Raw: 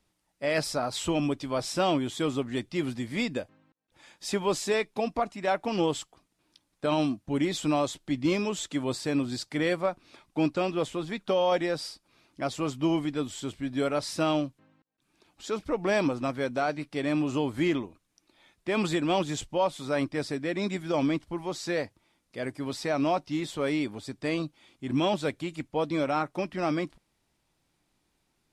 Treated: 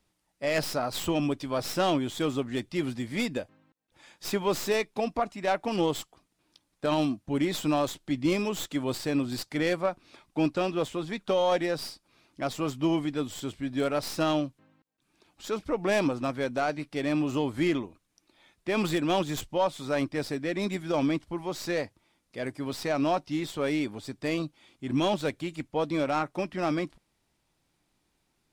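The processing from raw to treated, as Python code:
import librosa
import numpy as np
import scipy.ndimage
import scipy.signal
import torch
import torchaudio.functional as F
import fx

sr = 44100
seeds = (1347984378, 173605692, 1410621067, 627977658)

y = fx.tracing_dist(x, sr, depth_ms=0.083)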